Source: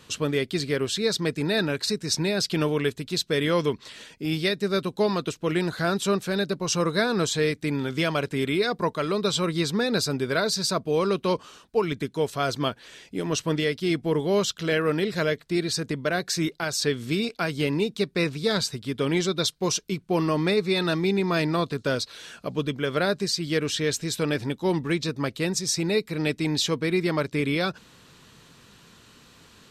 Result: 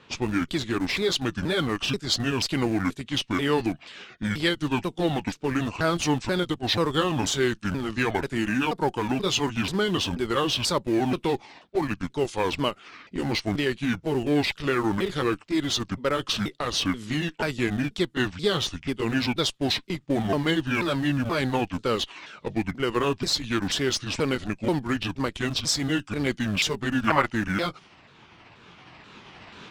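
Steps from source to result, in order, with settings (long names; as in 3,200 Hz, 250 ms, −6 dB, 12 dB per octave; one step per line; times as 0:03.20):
pitch shifter swept by a sawtooth −8.5 semitones, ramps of 484 ms
camcorder AGC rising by 5.2 dB per second
low-shelf EQ 120 Hz −11.5 dB
in parallel at −11 dB: comparator with hysteresis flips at −29 dBFS
on the sum: low-pass that shuts in the quiet parts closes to 2,800 Hz, open at −24.5 dBFS
gain on a spectral selection 0:27.08–0:27.32, 580–3,100 Hz +11 dB
level +1 dB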